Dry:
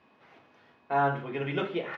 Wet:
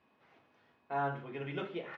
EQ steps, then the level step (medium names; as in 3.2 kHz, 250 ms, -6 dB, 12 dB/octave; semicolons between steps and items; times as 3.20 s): bass shelf 62 Hz +6 dB; -8.5 dB